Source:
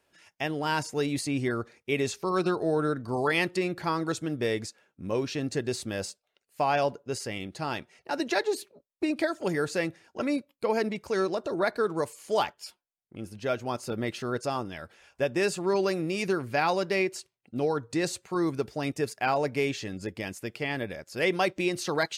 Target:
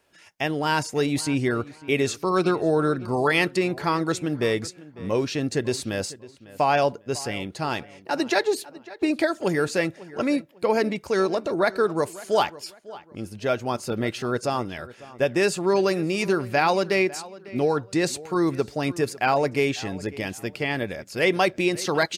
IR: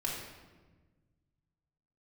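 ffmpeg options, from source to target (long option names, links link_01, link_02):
-filter_complex "[0:a]asplit=2[link_01][link_02];[link_02]adelay=550,lowpass=frequency=3300:poles=1,volume=-18.5dB,asplit=2[link_03][link_04];[link_04]adelay=550,lowpass=frequency=3300:poles=1,volume=0.29[link_05];[link_01][link_03][link_05]amix=inputs=3:normalize=0,volume=5dB"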